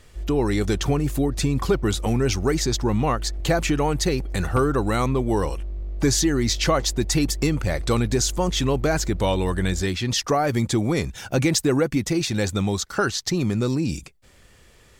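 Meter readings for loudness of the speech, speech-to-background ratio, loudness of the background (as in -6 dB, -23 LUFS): -23.0 LUFS, 10.5 dB, -33.5 LUFS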